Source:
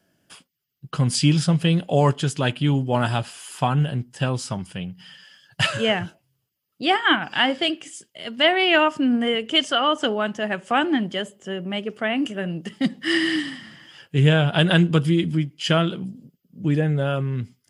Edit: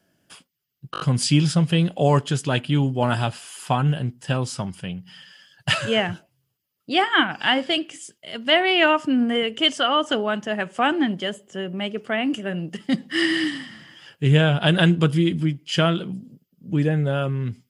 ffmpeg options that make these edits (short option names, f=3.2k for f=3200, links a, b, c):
-filter_complex "[0:a]asplit=5[a][b][c][d][e];[a]atrim=end=0.942[f];[b]atrim=start=0.918:end=0.942[g];[c]atrim=start=0.918:end=0.942[h];[d]atrim=start=0.918:end=0.942[i];[e]atrim=start=0.918[j];[f][g]acrossfade=d=0.004:c1=hsin:c2=hsin[k];[k][h]acrossfade=d=0.004:c1=hsin:c2=hsin[l];[l][i]acrossfade=d=0.004:c1=hsin:c2=hsin[m];[m][j]acrossfade=d=0.004:c1=hsin:c2=hsin"